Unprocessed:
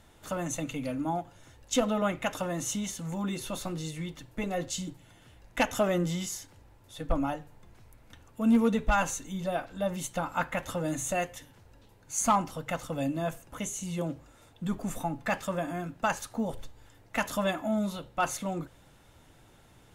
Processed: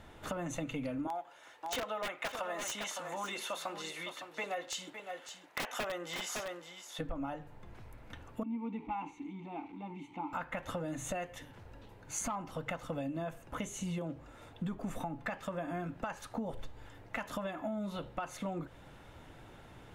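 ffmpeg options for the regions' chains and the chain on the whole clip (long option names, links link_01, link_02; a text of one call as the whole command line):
ffmpeg -i in.wav -filter_complex "[0:a]asettb=1/sr,asplit=3[link_01][link_02][link_03];[link_01]atrim=end=1.074[link_04];[link_02]atrim=start=1.07:end=6.99,asetpts=PTS-STARTPTS,afade=type=in:duration=0.004:curve=qsin,afade=type=out:start_time=5.916:duration=0.004:curve=qsin,highpass=680,aeval=exprs='(mod(15.8*val(0)+1,2)-1)/15.8':channel_layout=same,aecho=1:1:560:0.266,atrim=end_sample=261072[link_05];[link_03]atrim=start=6.986[link_06];[link_04][link_05]acrossfade=duration=0.004:curve1=hsin:curve2=qsin[link_07];[link_07][link_06]acrossfade=duration=0.004:curve1=qsin:curve2=hsin,asettb=1/sr,asplit=3[link_08][link_09][link_10];[link_08]atrim=end=8.434[link_11];[link_09]atrim=start=8.43:end=10.33,asetpts=PTS-STARTPTS,afade=type=in:duration=0.004:curve=qsin,afade=type=out:start_time=1.896:duration=0.004:curve=qsin,aeval=exprs='val(0)+0.5*0.0106*sgn(val(0))':channel_layout=same,asplit=3[link_12][link_13][link_14];[link_12]bandpass=frequency=300:width_type=q:width=8,volume=0dB[link_15];[link_13]bandpass=frequency=870:width_type=q:width=8,volume=-6dB[link_16];[link_14]bandpass=frequency=2240:width_type=q:width=8,volume=-9dB[link_17];[link_15][link_16][link_17]amix=inputs=3:normalize=0,bandreject=frequency=5000:width=8.2[link_18];[link_10]atrim=start=10.326[link_19];[link_11][link_18]acrossfade=duration=0.004:curve1=hsin:curve2=qsin[link_20];[link_20][link_19]acrossfade=duration=0.004:curve1=qsin:curve2=hsin,bass=frequency=250:gain=-2,treble=frequency=4000:gain=-11,alimiter=level_in=3dB:limit=-24dB:level=0:latency=1:release=448,volume=-3dB,acompressor=threshold=-40dB:ratio=6,volume=5.5dB" out.wav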